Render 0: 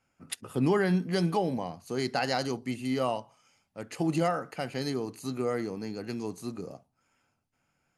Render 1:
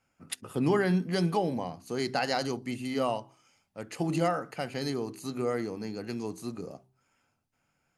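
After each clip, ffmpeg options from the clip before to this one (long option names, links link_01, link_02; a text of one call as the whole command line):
ffmpeg -i in.wav -af "bandreject=frequency=64.79:width_type=h:width=4,bandreject=frequency=129.58:width_type=h:width=4,bandreject=frequency=194.37:width_type=h:width=4,bandreject=frequency=259.16:width_type=h:width=4,bandreject=frequency=323.95:width_type=h:width=4,bandreject=frequency=388.74:width_type=h:width=4" out.wav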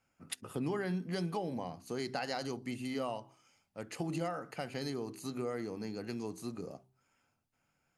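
ffmpeg -i in.wav -af "acompressor=threshold=-32dB:ratio=2.5,volume=-3dB" out.wav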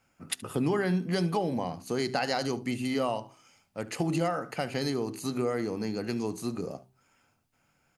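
ffmpeg -i in.wav -af "aecho=1:1:73:0.1,volume=8dB" out.wav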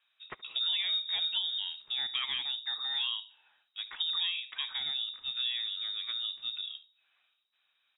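ffmpeg -i in.wav -af "lowpass=frequency=3300:width_type=q:width=0.5098,lowpass=frequency=3300:width_type=q:width=0.6013,lowpass=frequency=3300:width_type=q:width=0.9,lowpass=frequency=3300:width_type=q:width=2.563,afreqshift=-3900,volume=-4.5dB" out.wav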